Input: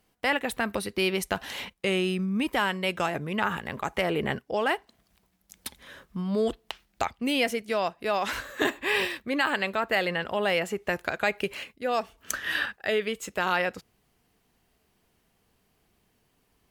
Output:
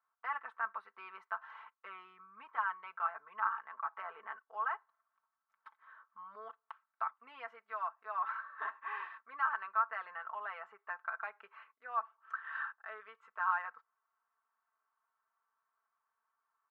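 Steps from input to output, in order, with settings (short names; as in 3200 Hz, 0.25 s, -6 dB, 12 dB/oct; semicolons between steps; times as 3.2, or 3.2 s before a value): de-esser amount 35%; Butterworth band-pass 1200 Hz, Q 2.6; comb 4.5 ms, depth 83%; gain -3.5 dB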